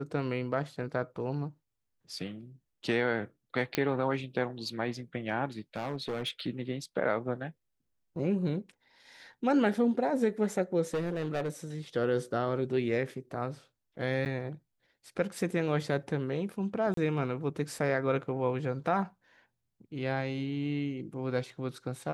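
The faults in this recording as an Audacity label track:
0.830000	0.830000	drop-out 2.2 ms
3.750000	3.750000	click −12 dBFS
5.590000	6.470000	clipping −29.5 dBFS
10.940000	11.500000	clipping −27.5 dBFS
14.250000	14.260000	drop-out 9 ms
16.940000	16.970000	drop-out 33 ms

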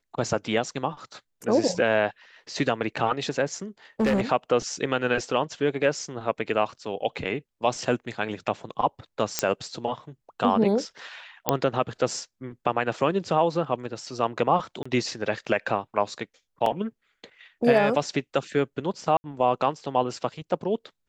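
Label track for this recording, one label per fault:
4.000000	4.210000	clipping −18 dBFS
9.390000	9.390000	click −6 dBFS
11.490000	11.490000	click −5 dBFS
14.830000	14.860000	drop-out 25 ms
16.660000	16.660000	drop-out 2.8 ms
19.170000	19.240000	drop-out 70 ms

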